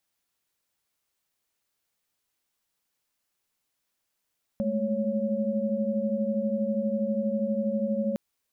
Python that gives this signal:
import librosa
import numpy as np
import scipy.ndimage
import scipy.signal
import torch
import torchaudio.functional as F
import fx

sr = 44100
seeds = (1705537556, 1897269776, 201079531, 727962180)

y = fx.chord(sr, length_s=3.56, notes=(56, 57, 73), wave='sine', level_db=-29.0)